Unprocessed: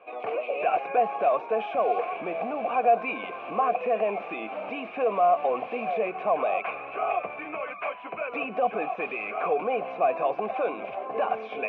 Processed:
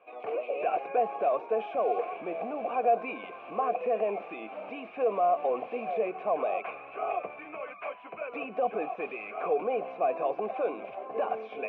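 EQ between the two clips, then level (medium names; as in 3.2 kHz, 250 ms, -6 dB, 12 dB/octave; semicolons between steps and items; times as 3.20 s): dynamic bell 390 Hz, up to +7 dB, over -37 dBFS, Q 0.85; -7.5 dB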